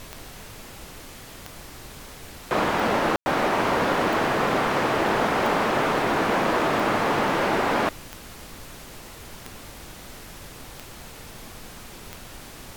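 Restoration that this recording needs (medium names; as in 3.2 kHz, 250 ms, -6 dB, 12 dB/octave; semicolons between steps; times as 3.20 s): de-click; room tone fill 3.16–3.26 s; noise print and reduce 29 dB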